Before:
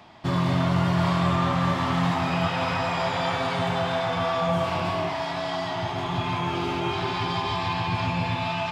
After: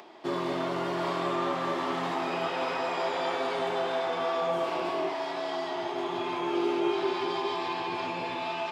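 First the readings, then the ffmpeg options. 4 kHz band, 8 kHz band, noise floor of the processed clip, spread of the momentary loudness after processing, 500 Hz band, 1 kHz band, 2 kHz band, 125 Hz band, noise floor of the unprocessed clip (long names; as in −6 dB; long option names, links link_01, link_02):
−6.0 dB, −6.0 dB, −34 dBFS, 4 LU, −0.5 dB, −4.5 dB, −5.5 dB, −19.5 dB, −30 dBFS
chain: -af "acompressor=mode=upward:threshold=-41dB:ratio=2.5,highpass=frequency=370:width_type=q:width=3.7,volume=-6dB"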